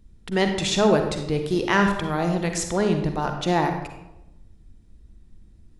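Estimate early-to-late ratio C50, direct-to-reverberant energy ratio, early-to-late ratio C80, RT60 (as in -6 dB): 6.0 dB, 5.0 dB, 8.5 dB, 0.90 s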